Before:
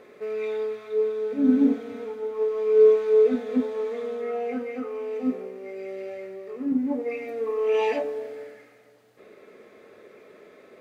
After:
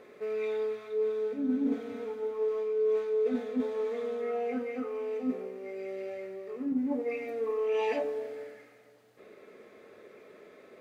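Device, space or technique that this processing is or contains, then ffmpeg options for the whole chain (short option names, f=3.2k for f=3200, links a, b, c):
compression on the reversed sound: -af "areverse,acompressor=threshold=-23dB:ratio=6,areverse,volume=-3dB"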